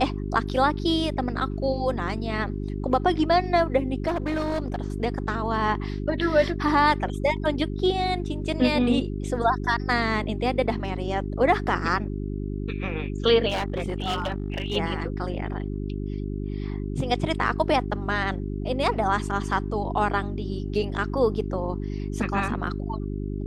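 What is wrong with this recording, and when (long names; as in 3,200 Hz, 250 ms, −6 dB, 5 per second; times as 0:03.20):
mains hum 50 Hz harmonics 8 −30 dBFS
0:04.07–0:04.80: clipping −22 dBFS
0:13.49–0:14.77: clipping −22.5 dBFS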